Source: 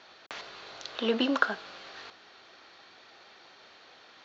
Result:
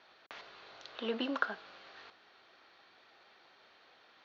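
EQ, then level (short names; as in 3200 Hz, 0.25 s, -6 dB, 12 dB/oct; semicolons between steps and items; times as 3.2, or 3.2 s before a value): air absorption 130 m; low shelf 460 Hz -3.5 dB; -6.0 dB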